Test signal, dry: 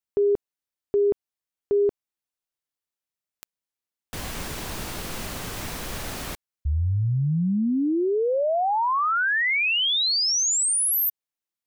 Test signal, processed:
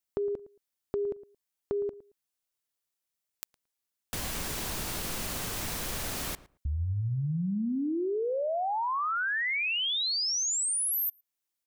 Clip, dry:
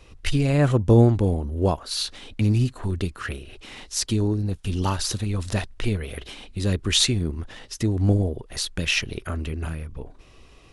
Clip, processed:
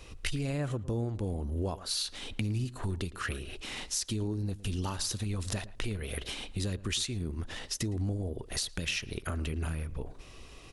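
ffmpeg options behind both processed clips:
ffmpeg -i in.wav -filter_complex "[0:a]highshelf=frequency=4400:gain=6,acompressor=threshold=-28dB:ratio=10:attack=4.6:release=432:knee=6:detection=peak,asplit=2[link_01][link_02];[link_02]adelay=112,lowpass=frequency=1700:poles=1,volume=-16.5dB,asplit=2[link_03][link_04];[link_04]adelay=112,lowpass=frequency=1700:poles=1,volume=0.17[link_05];[link_01][link_03][link_05]amix=inputs=3:normalize=0" out.wav

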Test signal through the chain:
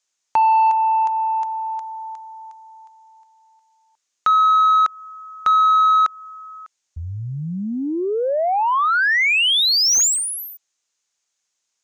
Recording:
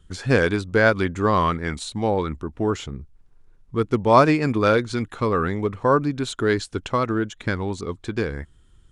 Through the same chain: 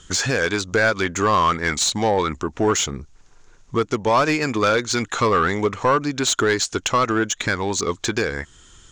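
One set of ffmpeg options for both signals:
ffmpeg -i in.wav -filter_complex "[0:a]lowpass=frequency=6700:width_type=q:width=4.7,asplit=2[link_01][link_02];[link_02]acompressor=threshold=-32dB:ratio=5,volume=3dB[link_03];[link_01][link_03]amix=inputs=2:normalize=0,alimiter=limit=-10.5dB:level=0:latency=1:release=480,highshelf=frequency=3500:gain=4.5,asplit=2[link_04][link_05];[link_05]highpass=frequency=720:poles=1,volume=13dB,asoftclip=type=tanh:threshold=-7.5dB[link_06];[link_04][link_06]amix=inputs=2:normalize=0,lowpass=frequency=3900:poles=1,volume=-6dB" out.wav

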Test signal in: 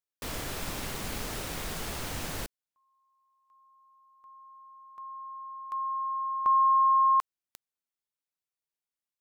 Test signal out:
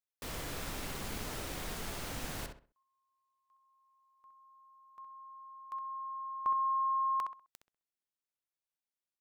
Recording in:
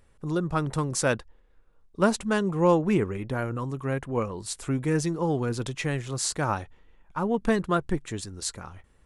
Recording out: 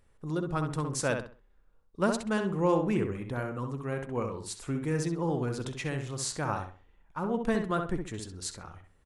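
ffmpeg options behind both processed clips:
ffmpeg -i in.wav -filter_complex "[0:a]asplit=2[link_01][link_02];[link_02]adelay=65,lowpass=frequency=2700:poles=1,volume=-5dB,asplit=2[link_03][link_04];[link_04]adelay=65,lowpass=frequency=2700:poles=1,volume=0.3,asplit=2[link_05][link_06];[link_06]adelay=65,lowpass=frequency=2700:poles=1,volume=0.3,asplit=2[link_07][link_08];[link_08]adelay=65,lowpass=frequency=2700:poles=1,volume=0.3[link_09];[link_01][link_03][link_05][link_07][link_09]amix=inputs=5:normalize=0,volume=-5.5dB" out.wav

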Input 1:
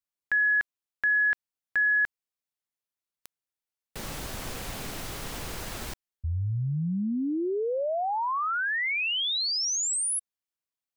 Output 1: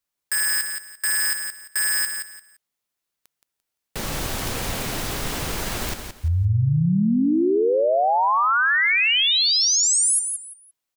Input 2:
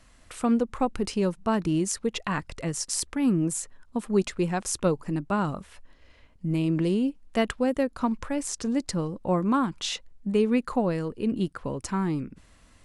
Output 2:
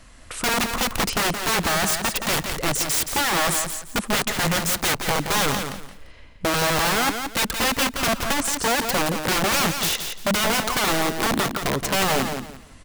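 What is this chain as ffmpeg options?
ffmpeg -i in.wav -af "aeval=exprs='(mod(17.8*val(0)+1,2)-1)/17.8':channel_layout=same,aecho=1:1:172|344|516:0.447|0.107|0.0257,volume=8.5dB" out.wav

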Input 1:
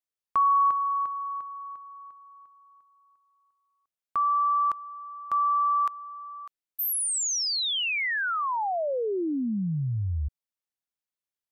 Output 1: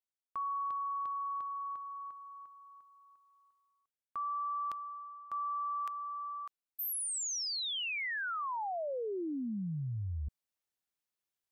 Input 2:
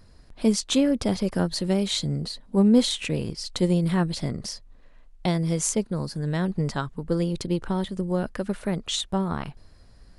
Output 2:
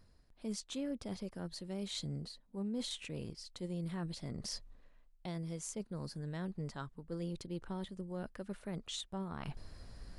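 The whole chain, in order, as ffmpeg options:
ffmpeg -i in.wav -af "areverse,acompressor=threshold=-36dB:ratio=8:attack=1.1:release=656:knee=6:detection=rms,areverse,volume=1dB" out.wav

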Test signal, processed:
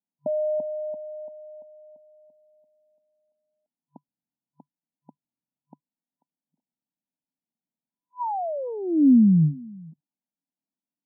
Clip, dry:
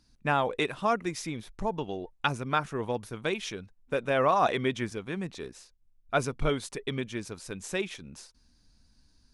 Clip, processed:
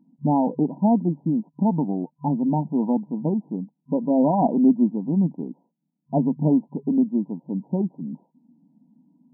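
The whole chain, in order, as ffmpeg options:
ffmpeg -i in.wav -af "aeval=exprs='0.316*(cos(1*acos(clip(val(0)/0.316,-1,1)))-cos(1*PI/2))+0.0112*(cos(8*acos(clip(val(0)/0.316,-1,1)))-cos(8*PI/2))':channel_layout=same,lowshelf=frequency=330:width_type=q:width=3:gain=7,afftfilt=real='re*between(b*sr/4096,150,1000)':imag='im*between(b*sr/4096,150,1000)':win_size=4096:overlap=0.75,volume=5.5dB" out.wav

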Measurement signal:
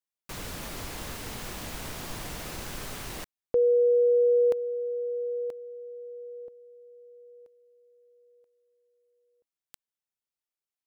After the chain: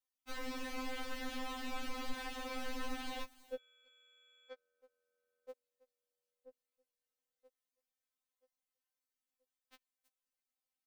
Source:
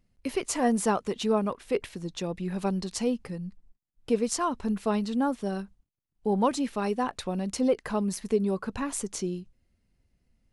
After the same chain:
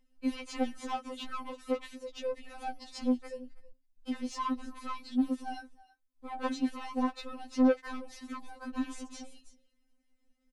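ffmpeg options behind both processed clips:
ffmpeg -i in.wav -filter_complex "[0:a]aecho=1:1:325:0.0668,acrossover=split=4700[link_01][link_02];[link_02]acompressor=threshold=-55dB:ratio=16:attack=2.3:release=36:detection=rms[link_03];[link_01][link_03]amix=inputs=2:normalize=0,asoftclip=type=tanh:threshold=-27dB,afftfilt=real='re*3.46*eq(mod(b,12),0)':imag='im*3.46*eq(mod(b,12),0)':win_size=2048:overlap=0.75" out.wav

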